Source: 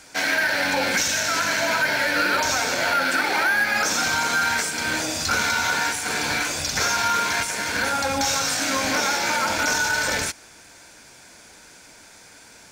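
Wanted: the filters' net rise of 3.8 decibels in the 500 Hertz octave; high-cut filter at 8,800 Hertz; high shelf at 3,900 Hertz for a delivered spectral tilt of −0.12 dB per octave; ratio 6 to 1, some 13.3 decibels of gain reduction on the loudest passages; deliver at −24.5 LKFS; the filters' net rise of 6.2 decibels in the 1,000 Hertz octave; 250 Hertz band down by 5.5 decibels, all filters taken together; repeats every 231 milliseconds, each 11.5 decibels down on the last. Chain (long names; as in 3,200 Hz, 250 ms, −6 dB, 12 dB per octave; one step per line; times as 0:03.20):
low-pass filter 8,800 Hz
parametric band 250 Hz −8.5 dB
parametric band 500 Hz +3.5 dB
parametric band 1,000 Hz +7.5 dB
high-shelf EQ 3,900 Hz +4 dB
downward compressor 6 to 1, threshold −29 dBFS
repeating echo 231 ms, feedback 27%, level −11.5 dB
level +5 dB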